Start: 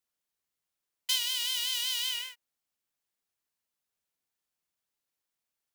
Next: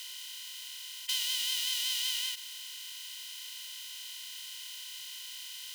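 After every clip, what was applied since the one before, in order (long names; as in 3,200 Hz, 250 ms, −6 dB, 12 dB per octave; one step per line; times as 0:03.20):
compressor on every frequency bin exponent 0.2
high-pass filter 800 Hz 12 dB per octave
level −7 dB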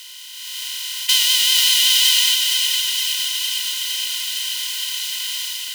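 automatic gain control gain up to 11.5 dB
on a send: feedback echo with a high-pass in the loop 463 ms, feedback 67%, high-pass 420 Hz, level −5 dB
on the sum: level +5 dB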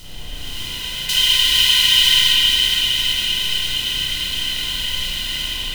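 background noise brown −36 dBFS
spring reverb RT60 2.1 s, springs 32/39 ms, chirp 50 ms, DRR −10 dB
level −5.5 dB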